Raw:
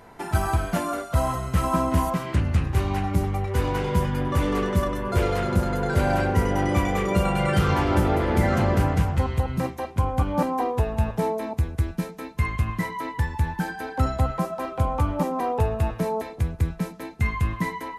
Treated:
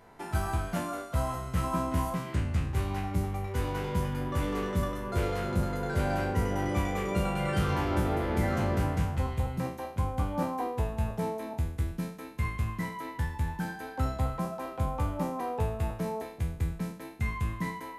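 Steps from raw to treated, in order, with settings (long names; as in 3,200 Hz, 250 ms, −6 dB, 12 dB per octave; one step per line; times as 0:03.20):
peak hold with a decay on every bin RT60 0.50 s
level −8.5 dB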